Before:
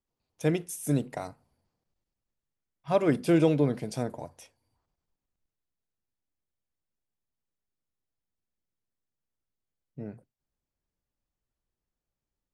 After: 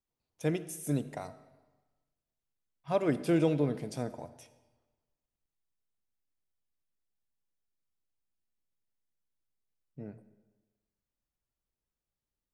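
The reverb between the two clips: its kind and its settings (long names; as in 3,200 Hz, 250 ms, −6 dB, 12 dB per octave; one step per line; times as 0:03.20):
comb and all-pass reverb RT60 1.2 s, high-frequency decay 0.85×, pre-delay 30 ms, DRR 15 dB
level −4.5 dB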